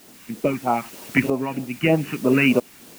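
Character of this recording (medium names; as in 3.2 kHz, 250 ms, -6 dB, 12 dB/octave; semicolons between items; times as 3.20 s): phasing stages 2, 3.2 Hz, lowest notch 510–2000 Hz; a quantiser's noise floor 8-bit, dither triangular; tremolo saw up 0.77 Hz, depth 70%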